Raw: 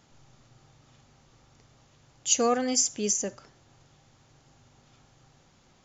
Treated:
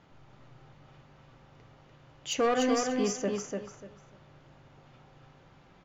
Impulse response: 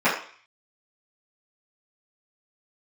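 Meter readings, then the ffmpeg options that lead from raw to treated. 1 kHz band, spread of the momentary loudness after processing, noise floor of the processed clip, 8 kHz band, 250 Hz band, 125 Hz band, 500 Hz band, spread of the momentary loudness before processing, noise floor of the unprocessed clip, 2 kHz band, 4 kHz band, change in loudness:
0.0 dB, 15 LU, -59 dBFS, no reading, +1.5 dB, +2.5 dB, +1.0 dB, 10 LU, -62 dBFS, +3.0 dB, -4.0 dB, -4.0 dB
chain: -filter_complex "[0:a]lowpass=2800,asoftclip=type=tanh:threshold=0.0668,aecho=1:1:294|588|882:0.631|0.145|0.0334,asplit=2[s0][s1];[1:a]atrim=start_sample=2205,asetrate=48510,aresample=44100[s2];[s1][s2]afir=irnorm=-1:irlink=0,volume=0.0501[s3];[s0][s3]amix=inputs=2:normalize=0,volume=1.26"

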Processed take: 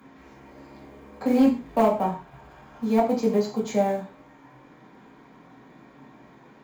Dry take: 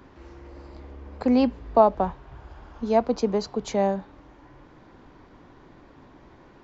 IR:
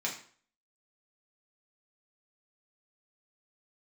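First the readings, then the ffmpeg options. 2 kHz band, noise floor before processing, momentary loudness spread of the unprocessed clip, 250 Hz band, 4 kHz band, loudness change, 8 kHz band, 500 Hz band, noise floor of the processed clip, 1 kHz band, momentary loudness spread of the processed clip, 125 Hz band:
+2.0 dB, -52 dBFS, 14 LU, +2.0 dB, -2.5 dB, 0.0 dB, no reading, -1.0 dB, -52 dBFS, -2.0 dB, 11 LU, +0.5 dB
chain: -filter_complex "[0:a]aemphasis=mode=production:type=cd,acrossover=split=870[s0][s1];[s0]acrusher=bits=6:mode=log:mix=0:aa=0.000001[s2];[s1]asoftclip=type=tanh:threshold=0.0355[s3];[s2][s3]amix=inputs=2:normalize=0[s4];[1:a]atrim=start_sample=2205,afade=t=out:st=0.2:d=0.01,atrim=end_sample=9261[s5];[s4][s5]afir=irnorm=-1:irlink=0,volume=2.66,asoftclip=hard,volume=0.376,equalizer=f=5300:w=1:g=-8,volume=0.75"

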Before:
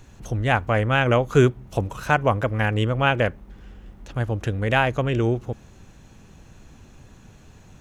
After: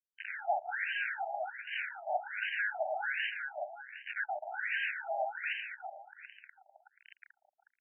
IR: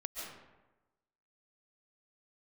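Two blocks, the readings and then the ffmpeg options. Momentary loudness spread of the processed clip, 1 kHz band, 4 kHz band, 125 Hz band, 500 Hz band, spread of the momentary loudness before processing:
12 LU, -11.0 dB, -11.0 dB, under -40 dB, -17.0 dB, 10 LU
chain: -filter_complex "[0:a]highpass=210,highshelf=f=2800:g=5,acompressor=threshold=0.0398:ratio=8,asplit=2[s0][s1];[s1]highpass=f=720:p=1,volume=70.8,asoftclip=type=tanh:threshold=0.2[s2];[s0][s2]amix=inputs=2:normalize=0,lowpass=f=1100:p=1,volume=0.501,acrusher=bits=3:mix=0:aa=0.000001,asuperstop=centerf=1100:order=8:qfactor=1.7,aecho=1:1:364|728|1092|1456:0.631|0.215|0.0729|0.0248,afftfilt=real='re*between(b*sr/1024,800*pow(2200/800,0.5+0.5*sin(2*PI*1.3*pts/sr))/1.41,800*pow(2200/800,0.5+0.5*sin(2*PI*1.3*pts/sr))*1.41)':imag='im*between(b*sr/1024,800*pow(2200/800,0.5+0.5*sin(2*PI*1.3*pts/sr))/1.41,800*pow(2200/800,0.5+0.5*sin(2*PI*1.3*pts/sr))*1.41)':win_size=1024:overlap=0.75,volume=0.631"

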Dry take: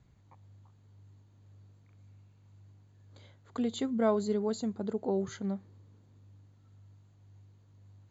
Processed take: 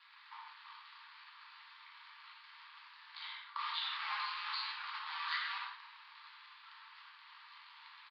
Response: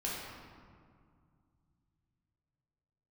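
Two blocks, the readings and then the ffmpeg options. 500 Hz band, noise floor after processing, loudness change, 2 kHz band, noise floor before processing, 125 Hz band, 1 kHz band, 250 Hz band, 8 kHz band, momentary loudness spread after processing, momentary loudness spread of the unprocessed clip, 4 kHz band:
under -40 dB, -59 dBFS, -8.0 dB, +10.5 dB, -62 dBFS, under -40 dB, +1.5 dB, under -40 dB, no reading, 18 LU, 9 LU, +9.0 dB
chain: -filter_complex "[0:a]areverse,acompressor=threshold=0.00891:ratio=8,areverse,asoftclip=type=hard:threshold=0.0126,aresample=16000,acrusher=bits=2:mode=log:mix=0:aa=0.000001,aresample=44100,tremolo=f=160:d=0.889,asuperpass=centerf=2100:order=20:qfactor=0.56[s0];[1:a]atrim=start_sample=2205,atrim=end_sample=6174,asetrate=33075,aresample=44100[s1];[s0][s1]afir=irnorm=-1:irlink=0,volume=7.08"

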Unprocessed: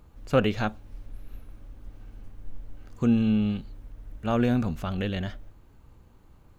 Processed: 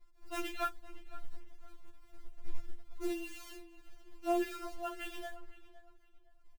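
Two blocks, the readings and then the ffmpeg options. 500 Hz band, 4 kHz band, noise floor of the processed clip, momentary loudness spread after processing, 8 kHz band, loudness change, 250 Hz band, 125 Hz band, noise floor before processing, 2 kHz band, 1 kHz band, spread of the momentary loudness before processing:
-10.5 dB, -9.0 dB, -61 dBFS, 22 LU, no reading, -13.0 dB, -17.0 dB, under -25 dB, -55 dBFS, -9.0 dB, -5.5 dB, 12 LU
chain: -filter_complex "[0:a]lowpass=5900,afftdn=nr=36:nf=-45,acrossover=split=250|730|3000[s0][s1][s2][s3];[s0]alimiter=level_in=1.68:limit=0.0631:level=0:latency=1:release=43,volume=0.596[s4];[s4][s1][s2][s3]amix=inputs=4:normalize=0,asoftclip=type=tanh:threshold=0.2,acrossover=split=540[s5][s6];[s5]aeval=exprs='val(0)*(1-0.5/2+0.5/2*cos(2*PI*2.3*n/s))':c=same[s7];[s6]aeval=exprs='val(0)*(1-0.5/2-0.5/2*cos(2*PI*2.3*n/s))':c=same[s8];[s7][s8]amix=inputs=2:normalize=0,acrusher=bits=4:mode=log:mix=0:aa=0.000001,asplit=2[s9][s10];[s10]adelay=511,lowpass=f=3500:p=1,volume=0.141,asplit=2[s11][s12];[s12]adelay=511,lowpass=f=3500:p=1,volume=0.27,asplit=2[s13][s14];[s14]adelay=511,lowpass=f=3500:p=1,volume=0.27[s15];[s9][s11][s13][s15]amix=inputs=4:normalize=0,afftfilt=real='re*4*eq(mod(b,16),0)':imag='im*4*eq(mod(b,16),0)':win_size=2048:overlap=0.75,volume=0.841"

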